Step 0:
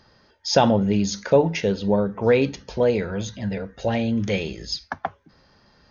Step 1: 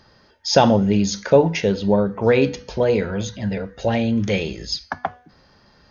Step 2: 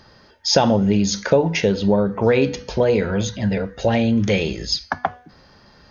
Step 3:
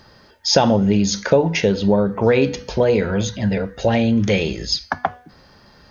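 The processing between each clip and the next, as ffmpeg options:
ffmpeg -i in.wav -af "bandreject=frequency=245.1:width_type=h:width=4,bandreject=frequency=490.2:width_type=h:width=4,bandreject=frequency=735.3:width_type=h:width=4,bandreject=frequency=980.4:width_type=h:width=4,bandreject=frequency=1225.5:width_type=h:width=4,bandreject=frequency=1470.6:width_type=h:width=4,bandreject=frequency=1715.7:width_type=h:width=4,bandreject=frequency=1960.8:width_type=h:width=4,bandreject=frequency=2205.9:width_type=h:width=4,bandreject=frequency=2451:width_type=h:width=4,bandreject=frequency=2696.1:width_type=h:width=4,bandreject=frequency=2941.2:width_type=h:width=4,bandreject=frequency=3186.3:width_type=h:width=4,bandreject=frequency=3431.4:width_type=h:width=4,bandreject=frequency=3676.5:width_type=h:width=4,bandreject=frequency=3921.6:width_type=h:width=4,bandreject=frequency=4166.7:width_type=h:width=4,bandreject=frequency=4411.8:width_type=h:width=4,bandreject=frequency=4656.9:width_type=h:width=4,bandreject=frequency=4902:width_type=h:width=4,bandreject=frequency=5147.1:width_type=h:width=4,bandreject=frequency=5392.2:width_type=h:width=4,bandreject=frequency=5637.3:width_type=h:width=4,bandreject=frequency=5882.4:width_type=h:width=4,bandreject=frequency=6127.5:width_type=h:width=4,bandreject=frequency=6372.6:width_type=h:width=4,volume=3dB" out.wav
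ffmpeg -i in.wav -af "acompressor=threshold=-18dB:ratio=2.5,volume=4dB" out.wav
ffmpeg -i in.wav -af "acrusher=bits=11:mix=0:aa=0.000001,volume=1dB" out.wav

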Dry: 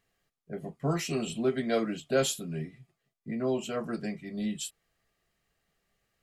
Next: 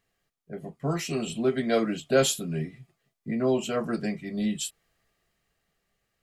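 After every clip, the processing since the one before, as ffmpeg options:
ffmpeg -i in.wav -af "dynaudnorm=framelen=270:gausssize=11:maxgain=5dB" out.wav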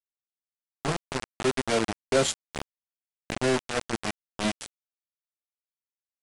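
ffmpeg -i in.wav -af "acrusher=bits=3:mix=0:aa=0.000001,aresample=22050,aresample=44100,volume=-2dB" out.wav

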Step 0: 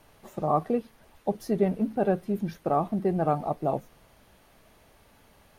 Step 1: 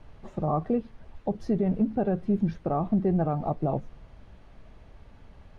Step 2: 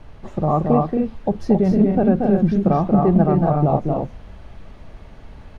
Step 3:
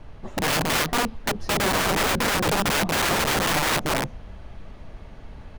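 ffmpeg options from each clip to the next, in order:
ffmpeg -i in.wav -af "lowpass=7600,aemphasis=mode=reproduction:type=bsi,alimiter=limit=-16.5dB:level=0:latency=1:release=139" out.wav
ffmpeg -i in.wav -af "aecho=1:1:230.3|271.1:0.631|0.562,volume=8dB" out.wav
ffmpeg -i in.wav -af "aeval=exprs='(mod(6.68*val(0)+1,2)-1)/6.68':channel_layout=same,volume=-1dB" out.wav

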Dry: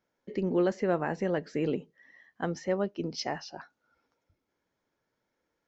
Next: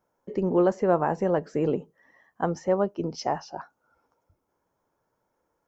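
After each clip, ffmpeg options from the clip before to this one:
ffmpeg -i in.wav -af "equalizer=frequency=250:width_type=o:width=1:gain=-4,equalizer=frequency=1000:width_type=o:width=1:gain=6,equalizer=frequency=2000:width_type=o:width=1:gain=-9,equalizer=frequency=4000:width_type=o:width=1:gain=-11,volume=6dB" out.wav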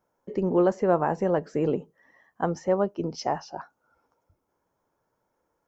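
ffmpeg -i in.wav -af anull out.wav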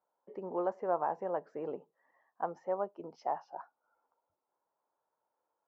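ffmpeg -i in.wav -af "bandpass=frequency=850:width_type=q:width=1.5:csg=0,volume=-5.5dB" out.wav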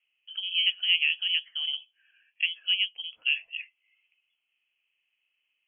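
ffmpeg -i in.wav -af "lowpass=frequency=3000:width_type=q:width=0.5098,lowpass=frequency=3000:width_type=q:width=0.6013,lowpass=frequency=3000:width_type=q:width=0.9,lowpass=frequency=3000:width_type=q:width=2.563,afreqshift=-3500,volume=7.5dB" out.wav

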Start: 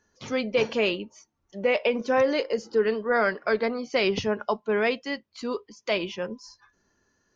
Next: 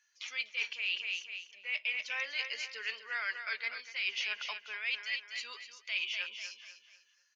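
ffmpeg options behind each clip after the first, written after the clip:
ffmpeg -i in.wav -af "highpass=frequency=2400:width_type=q:width=2.5,aecho=1:1:247|494|741|988:0.299|0.107|0.0387|0.0139,areverse,acompressor=threshold=-30dB:ratio=6,areverse,volume=-2dB" out.wav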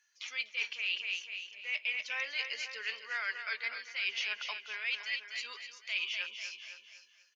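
ffmpeg -i in.wav -af "aecho=1:1:513:0.211" out.wav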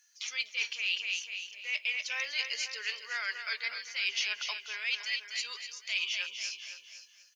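ffmpeg -i in.wav -af "bass=frequency=250:gain=-6,treble=frequency=4000:gain=12" out.wav

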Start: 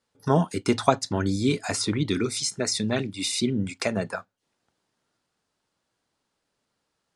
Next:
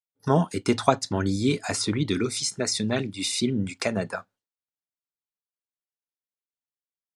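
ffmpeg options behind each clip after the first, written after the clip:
ffmpeg -i in.wav -af "agate=range=-33dB:threshold=-51dB:ratio=3:detection=peak" out.wav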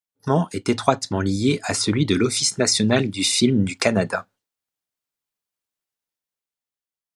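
ffmpeg -i in.wav -af "dynaudnorm=framelen=200:gausssize=11:maxgain=7dB,volume=1.5dB" out.wav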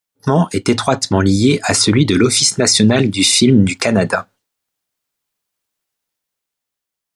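ffmpeg -i in.wav -af "alimiter=level_in=10.5dB:limit=-1dB:release=50:level=0:latency=1,volume=-1dB" out.wav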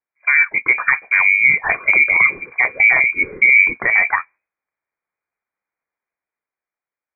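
ffmpeg -i in.wav -af "lowpass=frequency=2100:width_type=q:width=0.5098,lowpass=frequency=2100:width_type=q:width=0.6013,lowpass=frequency=2100:width_type=q:width=0.9,lowpass=frequency=2100:width_type=q:width=2.563,afreqshift=-2500,volume=-1dB" out.wav

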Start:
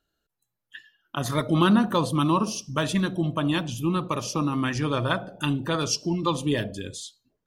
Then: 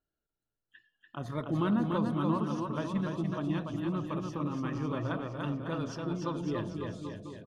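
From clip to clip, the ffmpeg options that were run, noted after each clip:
ffmpeg -i in.wav -filter_complex "[0:a]lowpass=frequency=1100:poles=1,asplit=2[link_01][link_02];[link_02]aecho=0:1:290|551|785.9|997.3|1188:0.631|0.398|0.251|0.158|0.1[link_03];[link_01][link_03]amix=inputs=2:normalize=0,volume=-9dB" out.wav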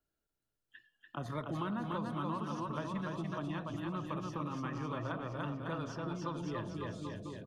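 ffmpeg -i in.wav -filter_complex "[0:a]acrossover=split=180|630|1900[link_01][link_02][link_03][link_04];[link_01]acompressor=threshold=-44dB:ratio=4[link_05];[link_02]acompressor=threshold=-45dB:ratio=4[link_06];[link_03]acompressor=threshold=-40dB:ratio=4[link_07];[link_04]acompressor=threshold=-55dB:ratio=4[link_08];[link_05][link_06][link_07][link_08]amix=inputs=4:normalize=0,volume=1dB" out.wav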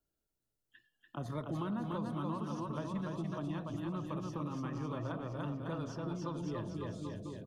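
ffmpeg -i in.wav -af "equalizer=frequency=1900:width_type=o:width=2.1:gain=-7,volume=1dB" out.wav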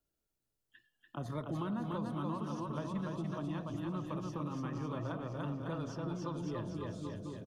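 ffmpeg -i in.wav -af "aecho=1:1:523|1046|1569|2092|2615:0.119|0.0677|0.0386|0.022|0.0125" out.wav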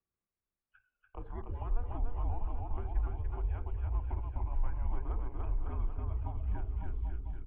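ffmpeg -i in.wav -af "highpass=frequency=170:width_type=q:width=0.5412,highpass=frequency=170:width_type=q:width=1.307,lowpass=frequency=2600:width_type=q:width=0.5176,lowpass=frequency=2600:width_type=q:width=0.7071,lowpass=frequency=2600:width_type=q:width=1.932,afreqshift=-240,asubboost=boost=10:cutoff=55,volume=-2.5dB" out.wav

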